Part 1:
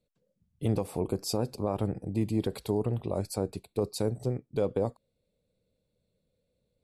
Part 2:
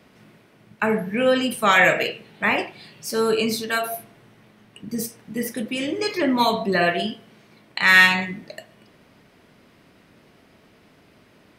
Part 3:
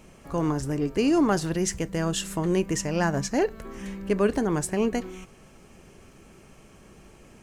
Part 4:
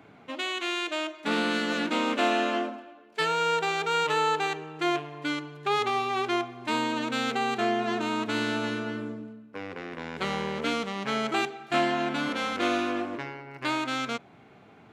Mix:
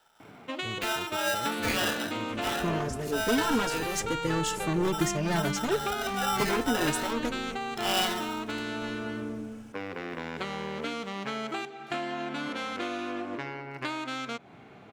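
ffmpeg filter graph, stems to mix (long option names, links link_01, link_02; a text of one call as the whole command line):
ffmpeg -i stem1.wav -i stem2.wav -i stem3.wav -i stem4.wav -filter_complex "[0:a]volume=-13dB[link_01];[1:a]equalizer=frequency=290:width_type=o:width=1.7:gain=6.5,aeval=exprs='val(0)*sgn(sin(2*PI*1100*n/s))':channel_layout=same,volume=-15dB[link_02];[2:a]aeval=exprs='0.1*(abs(mod(val(0)/0.1+3,4)-2)-1)':channel_layout=same,asplit=2[link_03][link_04];[link_04]adelay=2.9,afreqshift=0.35[link_05];[link_03][link_05]amix=inputs=2:normalize=1,adelay=2300,volume=0.5dB[link_06];[3:a]acompressor=threshold=-34dB:ratio=6,adelay=200,volume=3dB[link_07];[link_01][link_02][link_06][link_07]amix=inputs=4:normalize=0" out.wav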